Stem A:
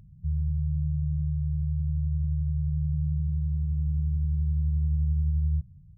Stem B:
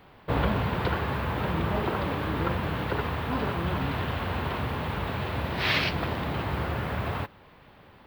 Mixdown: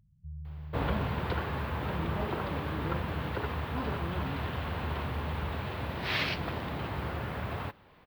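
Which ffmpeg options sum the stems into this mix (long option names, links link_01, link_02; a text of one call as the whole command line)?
ffmpeg -i stem1.wav -i stem2.wav -filter_complex "[0:a]volume=-14.5dB[link_01];[1:a]adelay=450,volume=-5.5dB[link_02];[link_01][link_02]amix=inputs=2:normalize=0" out.wav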